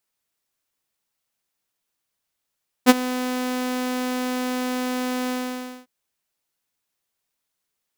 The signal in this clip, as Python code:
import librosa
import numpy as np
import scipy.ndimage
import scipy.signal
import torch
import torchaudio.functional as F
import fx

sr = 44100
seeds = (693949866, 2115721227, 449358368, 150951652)

y = fx.adsr_tone(sr, wave='saw', hz=252.0, attack_ms=37.0, decay_ms=30.0, sustain_db=-17.5, held_s=2.44, release_ms=562.0, level_db=-3.5)